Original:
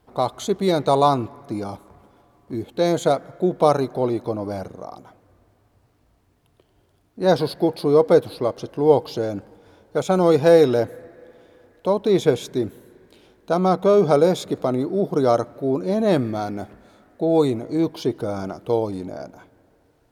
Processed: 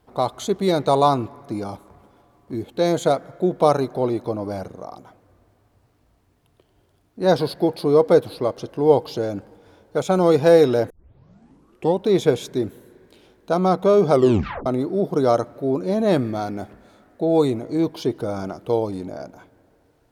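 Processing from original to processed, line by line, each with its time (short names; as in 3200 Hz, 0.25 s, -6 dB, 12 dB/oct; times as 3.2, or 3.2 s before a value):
10.9 tape start 1.16 s
14.13 tape stop 0.53 s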